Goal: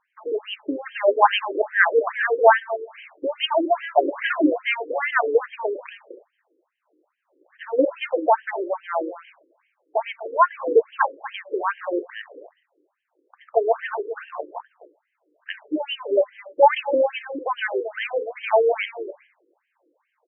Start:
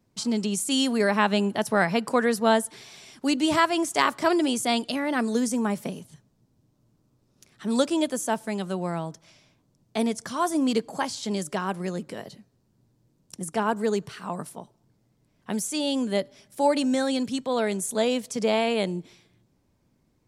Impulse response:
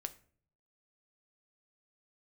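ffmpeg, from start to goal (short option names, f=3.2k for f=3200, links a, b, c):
-filter_complex "[0:a]asplit=2[a][b];[b]adelay=250,highpass=300,lowpass=3.4k,asoftclip=type=hard:threshold=-14.5dB,volume=-14dB[c];[a][c]amix=inputs=2:normalize=0,asplit=2[d][e];[1:a]atrim=start_sample=2205[f];[e][f]afir=irnorm=-1:irlink=0,volume=9dB[g];[d][g]amix=inputs=2:normalize=0,afftfilt=real='re*between(b*sr/1024,370*pow(2300/370,0.5+0.5*sin(2*PI*2.4*pts/sr))/1.41,370*pow(2300/370,0.5+0.5*sin(2*PI*2.4*pts/sr))*1.41)':imag='im*between(b*sr/1024,370*pow(2300/370,0.5+0.5*sin(2*PI*2.4*pts/sr))/1.41,370*pow(2300/370,0.5+0.5*sin(2*PI*2.4*pts/sr))*1.41)':win_size=1024:overlap=0.75,volume=1.5dB"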